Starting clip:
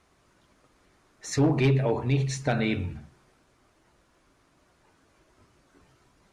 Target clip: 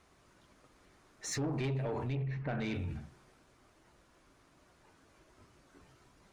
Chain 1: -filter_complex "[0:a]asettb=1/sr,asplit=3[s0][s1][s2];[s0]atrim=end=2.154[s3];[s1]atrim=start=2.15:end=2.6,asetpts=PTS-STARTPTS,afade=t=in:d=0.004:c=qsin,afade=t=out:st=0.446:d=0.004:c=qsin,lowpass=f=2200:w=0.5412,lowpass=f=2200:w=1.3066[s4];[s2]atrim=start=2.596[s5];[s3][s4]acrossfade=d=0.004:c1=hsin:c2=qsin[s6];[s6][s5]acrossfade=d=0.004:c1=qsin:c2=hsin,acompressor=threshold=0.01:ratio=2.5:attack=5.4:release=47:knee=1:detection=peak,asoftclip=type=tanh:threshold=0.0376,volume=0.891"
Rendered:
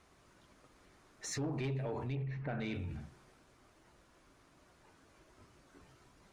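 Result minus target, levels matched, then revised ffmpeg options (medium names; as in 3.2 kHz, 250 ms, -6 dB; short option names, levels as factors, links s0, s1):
compression: peak gain reduction +4 dB
-filter_complex "[0:a]asettb=1/sr,asplit=3[s0][s1][s2];[s0]atrim=end=2.154[s3];[s1]atrim=start=2.15:end=2.6,asetpts=PTS-STARTPTS,afade=t=in:d=0.004:c=qsin,afade=t=out:st=0.446:d=0.004:c=qsin,lowpass=f=2200:w=0.5412,lowpass=f=2200:w=1.3066[s4];[s2]atrim=start=2.596[s5];[s3][s4]acrossfade=d=0.004:c1=hsin:c2=qsin[s6];[s6][s5]acrossfade=d=0.004:c1=qsin:c2=hsin,acompressor=threshold=0.0211:ratio=2.5:attack=5.4:release=47:knee=1:detection=peak,asoftclip=type=tanh:threshold=0.0376,volume=0.891"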